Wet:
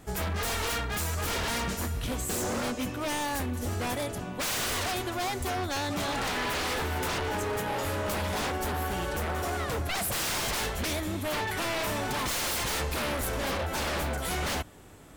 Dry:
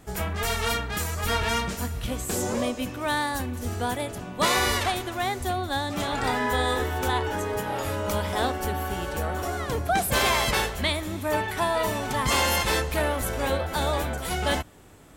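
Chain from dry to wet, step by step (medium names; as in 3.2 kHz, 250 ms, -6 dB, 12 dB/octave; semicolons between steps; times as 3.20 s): wavefolder -25.5 dBFS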